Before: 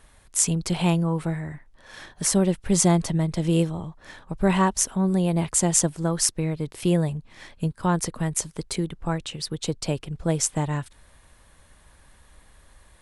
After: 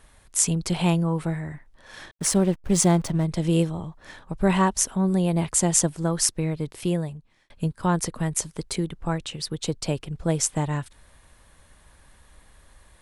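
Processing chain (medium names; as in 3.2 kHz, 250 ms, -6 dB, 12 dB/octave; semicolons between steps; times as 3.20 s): 2.11–3.25 s: hysteresis with a dead band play -32.5 dBFS; 6.63–7.50 s: fade out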